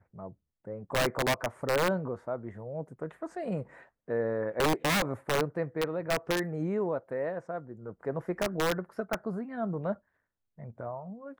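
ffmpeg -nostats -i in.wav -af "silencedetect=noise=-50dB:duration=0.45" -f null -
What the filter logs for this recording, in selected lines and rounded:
silence_start: 9.97
silence_end: 10.58 | silence_duration: 0.61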